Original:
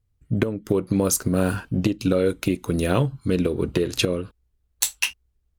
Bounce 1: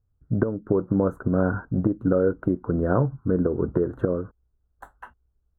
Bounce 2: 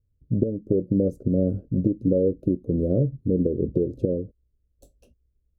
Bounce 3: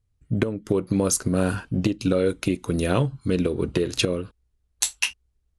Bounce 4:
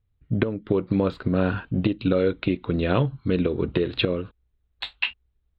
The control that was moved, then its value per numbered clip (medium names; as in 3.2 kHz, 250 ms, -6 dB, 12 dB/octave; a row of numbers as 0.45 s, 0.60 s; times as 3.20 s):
elliptic low-pass, frequency: 1.5 kHz, 570 Hz, 11 kHz, 3.9 kHz